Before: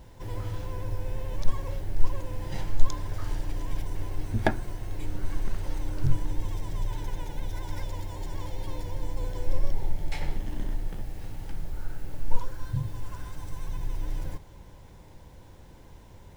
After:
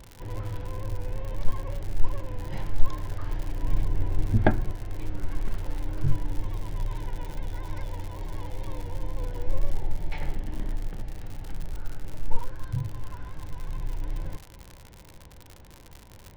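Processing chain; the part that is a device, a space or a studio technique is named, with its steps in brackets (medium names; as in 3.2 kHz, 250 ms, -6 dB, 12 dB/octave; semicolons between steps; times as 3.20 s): lo-fi chain (low-pass 3 kHz 12 dB/octave; wow and flutter; crackle 100 per s -33 dBFS); 3.63–4.72 s: bass shelf 380 Hz +6.5 dB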